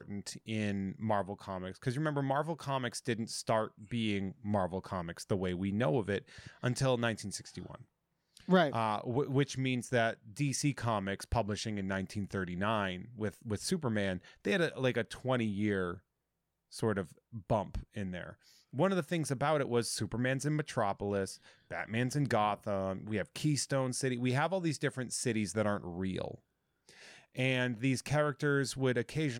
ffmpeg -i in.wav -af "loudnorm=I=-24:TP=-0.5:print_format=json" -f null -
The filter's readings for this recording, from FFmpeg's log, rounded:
"input_i" : "-34.2",
"input_tp" : "-16.4",
"input_lra" : "2.5",
"input_thresh" : "-44.7",